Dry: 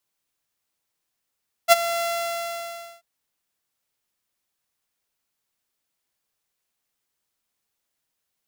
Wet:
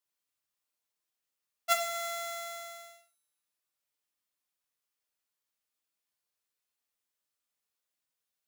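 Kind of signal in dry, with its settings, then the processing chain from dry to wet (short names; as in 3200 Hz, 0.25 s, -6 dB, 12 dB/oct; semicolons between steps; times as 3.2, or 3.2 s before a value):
ADSR saw 681 Hz, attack 41 ms, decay 24 ms, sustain -15 dB, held 0.34 s, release 0.998 s -5.5 dBFS
low shelf 360 Hz -5.5 dB; resonator 150 Hz, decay 1.3 s, mix 70%; non-linear reverb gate 0.16 s falling, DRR 3 dB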